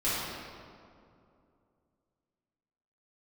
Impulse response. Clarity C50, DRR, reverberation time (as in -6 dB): -3.5 dB, -12.5 dB, 2.5 s